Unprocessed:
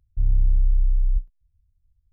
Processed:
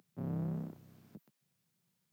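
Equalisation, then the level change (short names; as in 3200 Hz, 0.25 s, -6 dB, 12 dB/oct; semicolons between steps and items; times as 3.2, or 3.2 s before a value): steep high-pass 160 Hz 48 dB/oct; +14.0 dB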